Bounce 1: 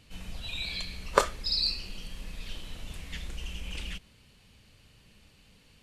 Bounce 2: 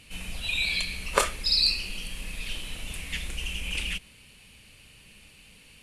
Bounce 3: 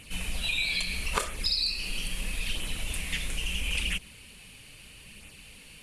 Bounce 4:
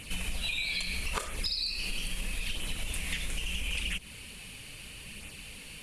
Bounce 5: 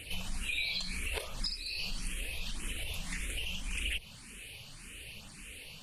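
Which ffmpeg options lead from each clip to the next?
-af "equalizer=f=100:t=o:w=0.67:g=-3,equalizer=f=2500:t=o:w=0.67:g=9,equalizer=f=10000:t=o:w=0.67:g=12,alimiter=level_in=1.58:limit=0.891:release=50:level=0:latency=1,volume=0.891"
-af "equalizer=f=10000:w=1.5:g=2.5,acompressor=threshold=0.0355:ratio=5,flanger=delay=0.1:depth=7.3:regen=-39:speed=0.76:shape=sinusoidal,volume=2.24"
-af "acompressor=threshold=0.02:ratio=5,volume=1.58"
-filter_complex "[0:a]asplit=2[s0][s1];[s1]afreqshift=1.8[s2];[s0][s2]amix=inputs=2:normalize=1"

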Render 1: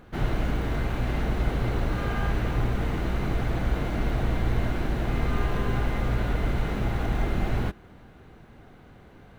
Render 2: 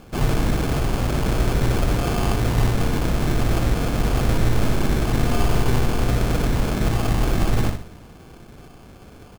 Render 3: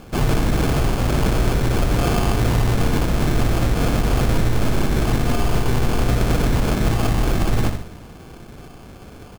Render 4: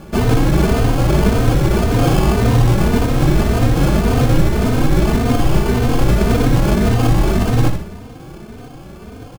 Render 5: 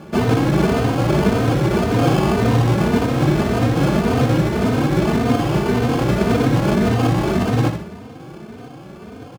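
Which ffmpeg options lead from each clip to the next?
-filter_complex "[0:a]asplit=2[s0][s1];[s1]adelay=61,lowpass=f=1600:p=1,volume=0.531,asplit=2[s2][s3];[s3]adelay=61,lowpass=f=1600:p=1,volume=0.41,asplit=2[s4][s5];[s5]adelay=61,lowpass=f=1600:p=1,volume=0.41,asplit=2[s6][s7];[s7]adelay=61,lowpass=f=1600:p=1,volume=0.41,asplit=2[s8][s9];[s9]adelay=61,lowpass=f=1600:p=1,volume=0.41[s10];[s0][s2][s4][s6][s8][s10]amix=inputs=6:normalize=0,acrusher=samples=23:mix=1:aa=0.000001,volume=1.88"
-af "alimiter=limit=0.211:level=0:latency=1:release=87,volume=1.58"
-filter_complex "[0:a]equalizer=f=240:w=0.32:g=4.5,asplit=2[s0][s1];[s1]adelay=3.1,afreqshift=1.8[s2];[s0][s2]amix=inputs=2:normalize=1,volume=1.78"
-af "highpass=120,highshelf=f=6800:g=-9.5"

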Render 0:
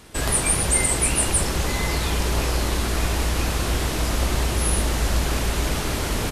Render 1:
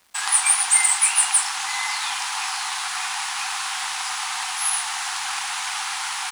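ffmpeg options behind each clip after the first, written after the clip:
-af "afftfilt=real='re*between(b*sr/4096,730,11000)':imag='im*between(b*sr/4096,730,11000)':win_size=4096:overlap=0.75,aeval=exprs='sgn(val(0))*max(abs(val(0))-0.00398,0)':c=same,aeval=exprs='0.398*(cos(1*acos(clip(val(0)/0.398,-1,1)))-cos(1*PI/2))+0.00631*(cos(7*acos(clip(val(0)/0.398,-1,1)))-cos(7*PI/2))':c=same,volume=1.68"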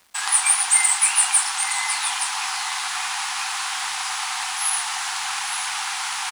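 -af "areverse,acompressor=mode=upward:threshold=0.0562:ratio=2.5,areverse,aecho=1:1:868:0.335"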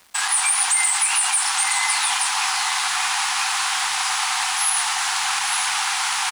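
-af "alimiter=limit=0.2:level=0:latency=1:release=47,volume=1.68"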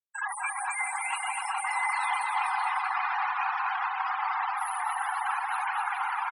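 -filter_complex "[0:a]afftfilt=real='re*gte(hypot(re,im),0.158)':imag='im*gte(hypot(re,im),0.158)':win_size=1024:overlap=0.75,acrossover=split=310 2300:gain=0.0631 1 0.1[s0][s1][s2];[s0][s1][s2]amix=inputs=3:normalize=0,asplit=2[s3][s4];[s4]aecho=0:1:250|425|547.5|633.2|693.3:0.631|0.398|0.251|0.158|0.1[s5];[s3][s5]amix=inputs=2:normalize=0,volume=0.794"

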